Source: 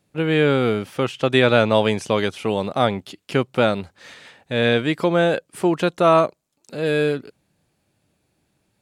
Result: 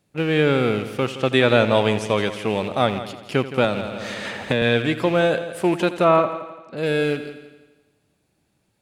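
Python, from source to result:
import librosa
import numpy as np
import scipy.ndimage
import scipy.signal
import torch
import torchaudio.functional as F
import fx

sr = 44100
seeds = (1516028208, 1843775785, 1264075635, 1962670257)

y = fx.rattle_buzz(x, sr, strikes_db=-26.0, level_db=-23.0)
y = fx.lowpass(y, sr, hz=2700.0, slope=12, at=(6.04, 6.77))
y = fx.echo_heads(y, sr, ms=84, heads='first and second', feedback_pct=46, wet_db=-15)
y = fx.band_squash(y, sr, depth_pct=100, at=(3.64, 4.62))
y = y * librosa.db_to_amplitude(-1.0)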